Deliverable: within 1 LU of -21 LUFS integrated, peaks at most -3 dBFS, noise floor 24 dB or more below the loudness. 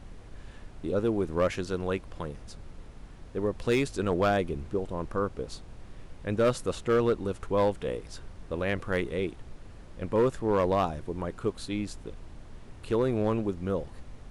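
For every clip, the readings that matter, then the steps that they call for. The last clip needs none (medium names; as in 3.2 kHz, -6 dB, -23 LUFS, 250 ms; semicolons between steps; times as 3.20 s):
clipped samples 0.6%; clipping level -18.0 dBFS; noise floor -48 dBFS; noise floor target -54 dBFS; loudness -30.0 LUFS; peak level -18.0 dBFS; loudness target -21.0 LUFS
-> clip repair -18 dBFS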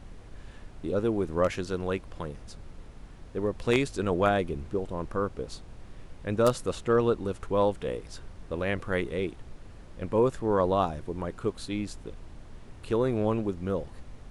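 clipped samples 0.0%; noise floor -48 dBFS; noise floor target -54 dBFS
-> noise print and reduce 6 dB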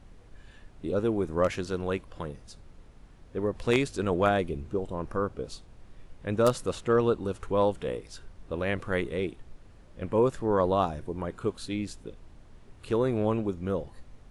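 noise floor -53 dBFS; noise floor target -54 dBFS
-> noise print and reduce 6 dB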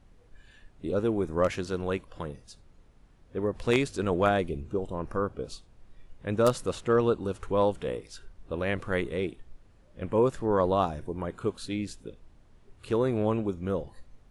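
noise floor -58 dBFS; loudness -29.0 LUFS; peak level -9.0 dBFS; loudness target -21.0 LUFS
-> trim +8 dB; peak limiter -3 dBFS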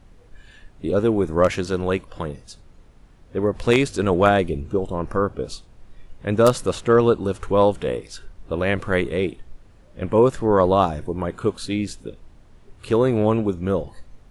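loudness -21.5 LUFS; peak level -3.0 dBFS; noise floor -50 dBFS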